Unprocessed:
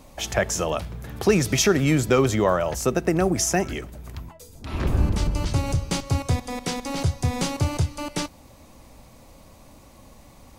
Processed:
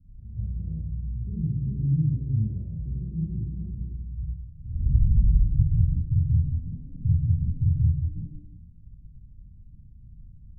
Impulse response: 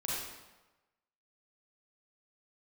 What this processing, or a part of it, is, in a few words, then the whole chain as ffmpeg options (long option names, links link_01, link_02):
club heard from the street: -filter_complex "[0:a]alimiter=limit=-13dB:level=0:latency=1:release=131,lowpass=frequency=150:width=0.5412,lowpass=frequency=150:width=1.3066[link_01];[1:a]atrim=start_sample=2205[link_02];[link_01][link_02]afir=irnorm=-1:irlink=0"